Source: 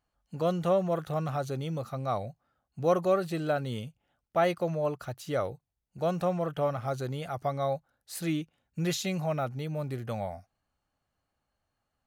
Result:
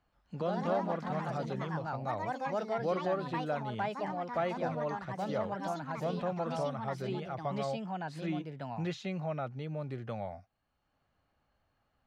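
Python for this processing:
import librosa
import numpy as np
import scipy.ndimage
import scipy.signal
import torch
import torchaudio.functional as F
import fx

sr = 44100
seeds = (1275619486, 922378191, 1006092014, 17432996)

y = scipy.signal.sosfilt(scipy.signal.butter(2, 3700.0, 'lowpass', fs=sr, output='sos'), x)
y = fx.echo_pitch(y, sr, ms=124, semitones=3, count=3, db_per_echo=-3.0)
y = fx.band_squash(y, sr, depth_pct=40)
y = y * 10.0 ** (-6.5 / 20.0)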